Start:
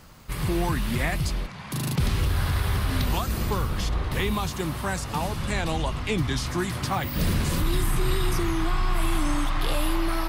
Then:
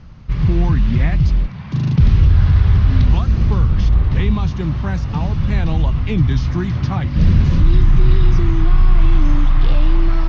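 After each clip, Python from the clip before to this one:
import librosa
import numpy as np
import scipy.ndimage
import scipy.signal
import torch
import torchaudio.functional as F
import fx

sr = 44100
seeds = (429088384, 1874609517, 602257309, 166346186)

y = scipy.signal.sosfilt(scipy.signal.ellip(4, 1.0, 40, 6100.0, 'lowpass', fs=sr, output='sos'), x)
y = fx.bass_treble(y, sr, bass_db=15, treble_db=-6)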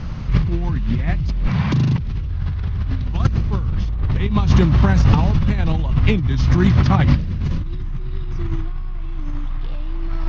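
y = fx.over_compress(x, sr, threshold_db=-22.0, ratio=-1.0)
y = F.gain(torch.from_numpy(y), 3.5).numpy()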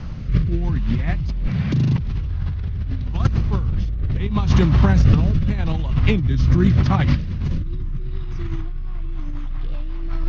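y = fx.rotary_switch(x, sr, hz=0.8, then_hz=5.5, switch_at_s=8.44)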